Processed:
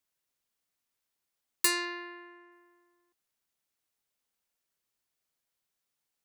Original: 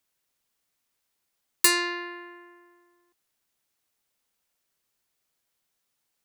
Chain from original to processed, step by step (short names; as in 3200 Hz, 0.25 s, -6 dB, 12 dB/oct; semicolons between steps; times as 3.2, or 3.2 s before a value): 1.85–2.52 Bessel low-pass 6500 Hz; gain -6.5 dB